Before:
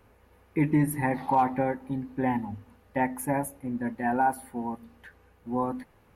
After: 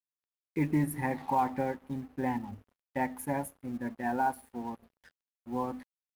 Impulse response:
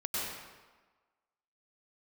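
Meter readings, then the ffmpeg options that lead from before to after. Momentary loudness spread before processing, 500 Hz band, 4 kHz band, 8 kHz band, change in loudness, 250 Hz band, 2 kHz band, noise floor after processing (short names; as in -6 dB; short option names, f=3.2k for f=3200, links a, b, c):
12 LU, -5.0 dB, n/a, -5.5 dB, -5.0 dB, -5.0 dB, -5.0 dB, under -85 dBFS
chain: -af "aeval=exprs='sgn(val(0))*max(abs(val(0))-0.00335,0)':c=same,acrusher=bits=8:mode=log:mix=0:aa=0.000001,volume=-4.5dB"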